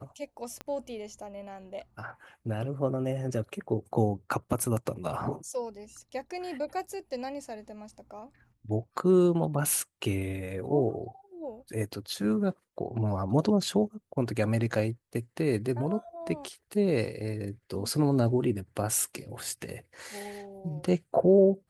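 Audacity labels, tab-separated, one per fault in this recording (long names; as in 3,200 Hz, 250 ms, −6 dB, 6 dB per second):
0.610000	0.610000	click −23 dBFS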